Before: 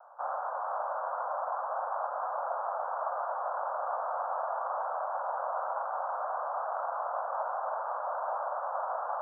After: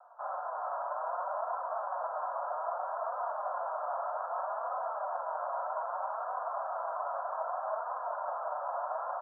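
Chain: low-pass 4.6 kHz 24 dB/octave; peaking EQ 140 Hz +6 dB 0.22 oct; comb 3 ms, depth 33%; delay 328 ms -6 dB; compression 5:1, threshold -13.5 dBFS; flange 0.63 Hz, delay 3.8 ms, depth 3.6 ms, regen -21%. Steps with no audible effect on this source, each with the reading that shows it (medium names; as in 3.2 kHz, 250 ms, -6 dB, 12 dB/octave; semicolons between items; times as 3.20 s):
low-pass 4.6 kHz: input has nothing above 1.7 kHz; peaking EQ 140 Hz: input has nothing below 430 Hz; compression, threshold -13.5 dBFS: peak at its input -19.0 dBFS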